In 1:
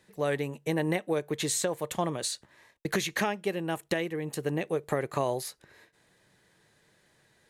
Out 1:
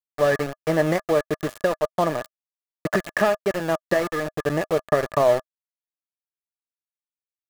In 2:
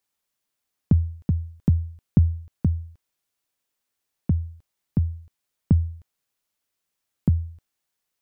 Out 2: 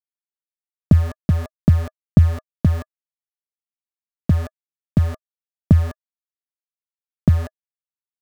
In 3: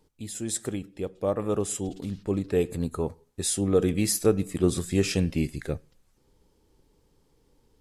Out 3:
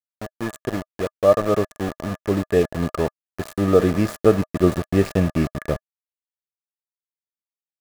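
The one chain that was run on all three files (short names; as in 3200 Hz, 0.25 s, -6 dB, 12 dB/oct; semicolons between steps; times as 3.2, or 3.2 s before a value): median filter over 15 samples; sample gate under -32.5 dBFS; small resonant body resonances 630/1200/1700 Hz, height 12 dB, ringing for 40 ms; gain +5.5 dB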